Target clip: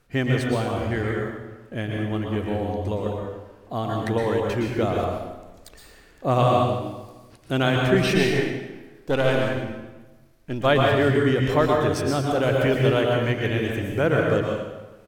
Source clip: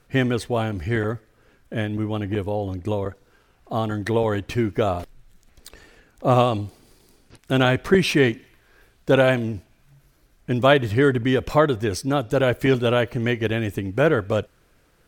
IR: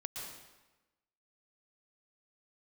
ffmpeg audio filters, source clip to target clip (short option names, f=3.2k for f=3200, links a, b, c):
-filter_complex "[0:a]asettb=1/sr,asplit=3[a][b][c];[a]atrim=end=8.144[d];[b]atrim=start=8.14:end=10.66,asetpts=PTS-STARTPTS,afade=t=in:d=0.004:c=qsin,afade=t=out:st=2.516:d=0.004:c=qsin,aeval=exprs='if(lt(val(0),0),0.447*val(0),val(0))':c=same[e];[c]atrim=start=10.656[f];[d][e]acrossfade=d=0.004:c1=hsin:c2=qsin[g];[g][f]acrossfade=d=0.004:c1=qsin:c2=hsin,asplit=2[h][i];[i]adelay=148,lowpass=f=2k:p=1,volume=-17dB,asplit=2[j][k];[k]adelay=148,lowpass=f=2k:p=1,volume=0.5,asplit=2[l][m];[m]adelay=148,lowpass=f=2k:p=1,volume=0.5,asplit=2[n][o];[o]adelay=148,lowpass=f=2k:p=1,volume=0.5[p];[h][j][l][n][p]amix=inputs=5:normalize=0[q];[1:a]atrim=start_sample=2205[r];[q][r]afir=irnorm=-1:irlink=0"